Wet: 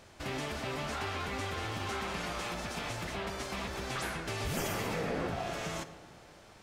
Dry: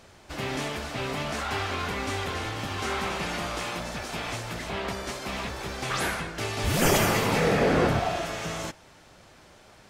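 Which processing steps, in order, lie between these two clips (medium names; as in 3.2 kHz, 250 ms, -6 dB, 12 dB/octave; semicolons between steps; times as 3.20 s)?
compression 3:1, threshold -31 dBFS, peak gain reduction 10 dB; time stretch by phase-locked vocoder 0.67×; algorithmic reverb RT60 2.5 s, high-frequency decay 0.4×, pre-delay 20 ms, DRR 12.5 dB; trim -2 dB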